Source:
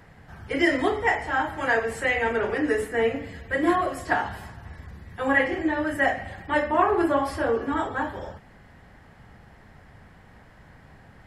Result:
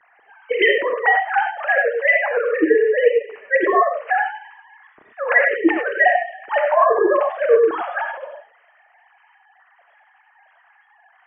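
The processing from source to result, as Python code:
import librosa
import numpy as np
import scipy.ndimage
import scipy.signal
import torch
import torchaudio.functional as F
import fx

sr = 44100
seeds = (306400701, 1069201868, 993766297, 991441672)

y = fx.sine_speech(x, sr)
y = fx.rev_gated(y, sr, seeds[0], gate_ms=120, shape='rising', drr_db=3.5)
y = y * 10.0 ** (5.0 / 20.0)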